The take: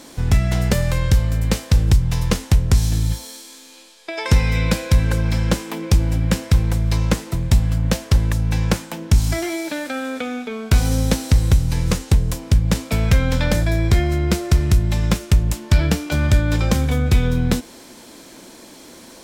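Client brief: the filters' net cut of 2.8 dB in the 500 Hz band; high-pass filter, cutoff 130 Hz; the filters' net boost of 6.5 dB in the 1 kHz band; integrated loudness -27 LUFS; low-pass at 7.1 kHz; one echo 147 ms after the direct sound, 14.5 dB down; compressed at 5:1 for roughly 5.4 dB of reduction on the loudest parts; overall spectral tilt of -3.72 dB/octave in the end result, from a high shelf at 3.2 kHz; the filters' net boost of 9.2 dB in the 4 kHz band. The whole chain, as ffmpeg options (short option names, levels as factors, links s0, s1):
-af "highpass=130,lowpass=7100,equalizer=f=500:t=o:g=-6.5,equalizer=f=1000:t=o:g=9,highshelf=f=3200:g=5.5,equalizer=f=4000:t=o:g=7.5,acompressor=threshold=0.1:ratio=5,aecho=1:1:147:0.188,volume=0.75"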